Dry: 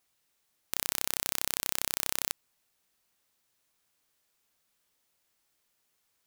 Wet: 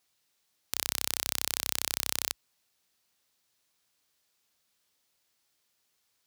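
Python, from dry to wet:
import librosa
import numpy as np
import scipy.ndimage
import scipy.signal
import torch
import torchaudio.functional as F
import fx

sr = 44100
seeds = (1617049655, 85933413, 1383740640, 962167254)

y = scipy.signal.sosfilt(scipy.signal.butter(4, 47.0, 'highpass', fs=sr, output='sos'), x)
y = fx.peak_eq(y, sr, hz=4500.0, db=4.5, octaves=1.3)
y = F.gain(torch.from_numpy(y), -1.0).numpy()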